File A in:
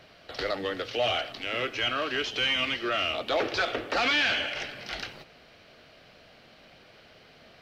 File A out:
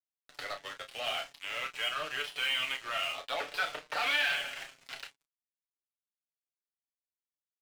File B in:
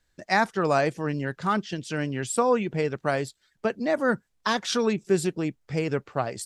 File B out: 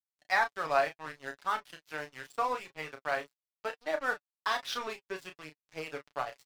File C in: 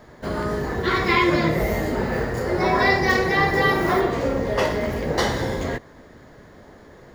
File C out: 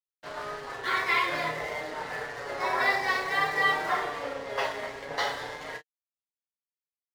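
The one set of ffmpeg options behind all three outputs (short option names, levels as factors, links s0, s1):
-filter_complex "[0:a]acrossover=split=570 5300:gain=0.1 1 0.0708[s0][s1][s2];[s0][s1][s2]amix=inputs=3:normalize=0,acontrast=41,aeval=exprs='sgn(val(0))*max(abs(val(0))-0.02,0)':c=same,flanger=delay=6.5:depth=1:regen=27:speed=0.52:shape=triangular,asplit=2[s3][s4];[s4]adelay=32,volume=0.398[s5];[s3][s5]amix=inputs=2:normalize=0,volume=0.562"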